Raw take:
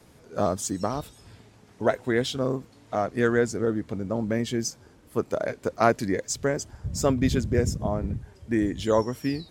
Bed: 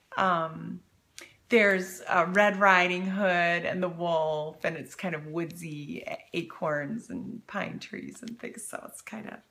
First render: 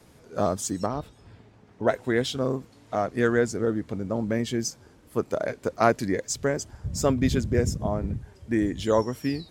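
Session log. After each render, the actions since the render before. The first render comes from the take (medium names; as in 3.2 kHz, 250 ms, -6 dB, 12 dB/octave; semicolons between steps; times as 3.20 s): 0.86–1.88 s: low-pass 2 kHz 6 dB/octave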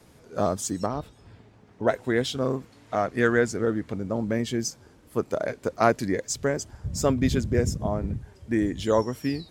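2.42–3.94 s: peaking EQ 1.9 kHz +4 dB 1.6 oct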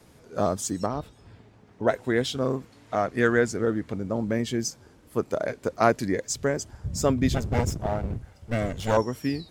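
7.34–8.97 s: comb filter that takes the minimum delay 1.4 ms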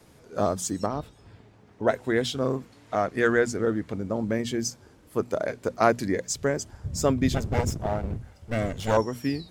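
hum notches 60/120/180/240 Hz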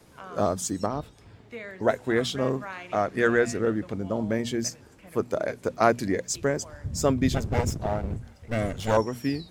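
add bed -18 dB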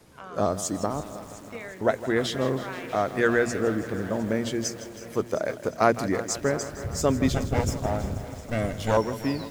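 multi-head delay 354 ms, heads first and second, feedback 49%, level -20.5 dB; bit-crushed delay 160 ms, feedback 80%, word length 7-bit, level -14 dB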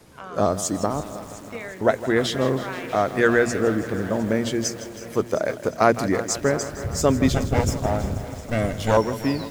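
trim +4 dB; peak limiter -3 dBFS, peak gain reduction 1.5 dB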